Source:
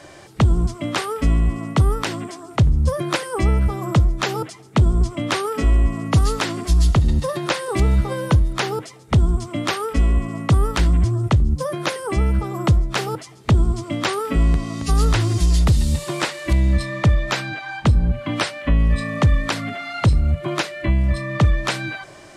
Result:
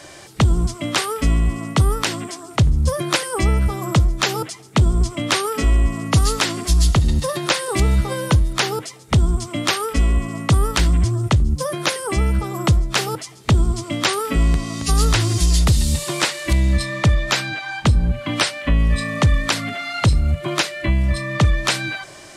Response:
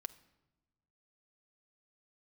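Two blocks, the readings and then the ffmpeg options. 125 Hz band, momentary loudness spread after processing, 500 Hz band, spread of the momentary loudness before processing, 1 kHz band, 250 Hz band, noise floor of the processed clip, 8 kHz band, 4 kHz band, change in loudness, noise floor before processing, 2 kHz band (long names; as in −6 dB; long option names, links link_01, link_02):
0.0 dB, 5 LU, +0.5 dB, 7 LU, +1.5 dB, 0.0 dB, −41 dBFS, +7.5 dB, +6.0 dB, +1.0 dB, −43 dBFS, +3.0 dB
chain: -af "highshelf=frequency=2500:gain=8.5"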